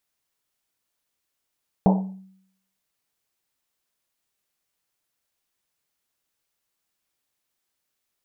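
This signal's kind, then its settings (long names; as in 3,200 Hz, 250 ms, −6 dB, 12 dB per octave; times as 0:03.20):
drum after Risset, pitch 190 Hz, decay 0.71 s, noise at 720 Hz, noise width 400 Hz, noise 25%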